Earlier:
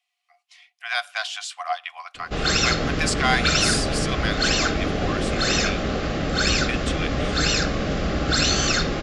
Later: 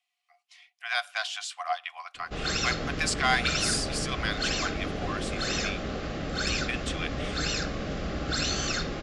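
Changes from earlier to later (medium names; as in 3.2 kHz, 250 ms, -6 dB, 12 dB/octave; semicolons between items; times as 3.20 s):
speech -3.5 dB; background -8.5 dB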